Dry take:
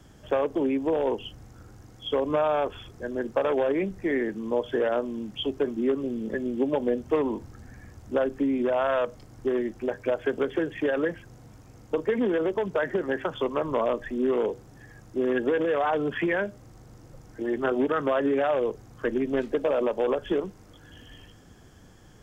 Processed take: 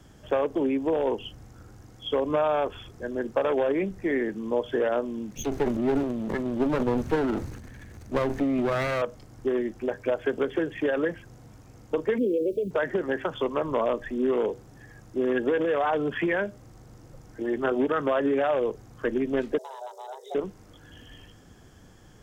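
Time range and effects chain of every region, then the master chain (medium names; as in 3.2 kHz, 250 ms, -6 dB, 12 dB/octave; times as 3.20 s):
5.31–9.02 s: comb filter that takes the minimum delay 0.47 ms + transient shaper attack +1 dB, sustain +10 dB + short-mantissa float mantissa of 8-bit
12.18–12.71 s: resonances exaggerated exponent 1.5 + word length cut 10-bit, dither none + brick-wall FIR band-stop 630–2200 Hz
19.58–20.35 s: FFT filter 120 Hz 0 dB, 250 Hz -6 dB, 450 Hz -18 dB, 2.3 kHz -20 dB, 4.9 kHz +5 dB + frequency shift +370 Hz
whole clip: none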